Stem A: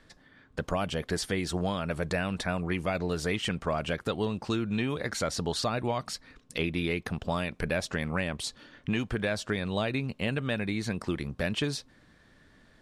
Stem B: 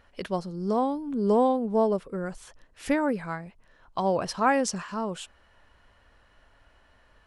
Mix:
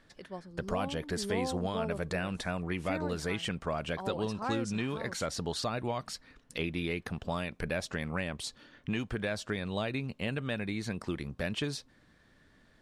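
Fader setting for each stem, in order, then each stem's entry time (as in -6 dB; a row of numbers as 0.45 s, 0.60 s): -4.0 dB, -13.5 dB; 0.00 s, 0.00 s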